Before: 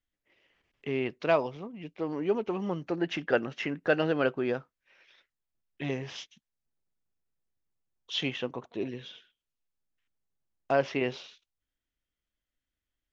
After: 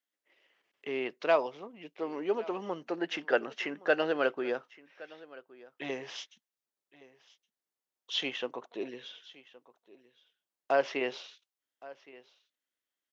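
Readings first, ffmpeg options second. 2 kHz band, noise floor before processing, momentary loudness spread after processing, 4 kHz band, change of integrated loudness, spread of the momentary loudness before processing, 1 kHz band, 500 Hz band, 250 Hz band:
-0.5 dB, under -85 dBFS, 21 LU, 0.0 dB, -2.0 dB, 15 LU, 0.0 dB, -1.5 dB, -6.0 dB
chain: -af "highpass=380,equalizer=f=2.4k:w=7.2:g=-2.5,aecho=1:1:1118:0.0944"

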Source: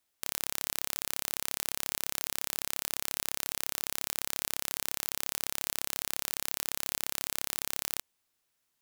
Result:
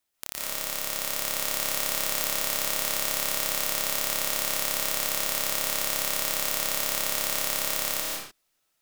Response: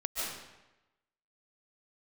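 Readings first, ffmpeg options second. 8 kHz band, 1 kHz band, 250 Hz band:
+7.5 dB, +9.5 dB, +7.5 dB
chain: -filter_complex "[0:a]dynaudnorm=f=200:g=11:m=11.5dB[a];[1:a]atrim=start_sample=2205,afade=t=out:st=0.36:d=0.01,atrim=end_sample=16317[b];[a][b]afir=irnorm=-1:irlink=0"

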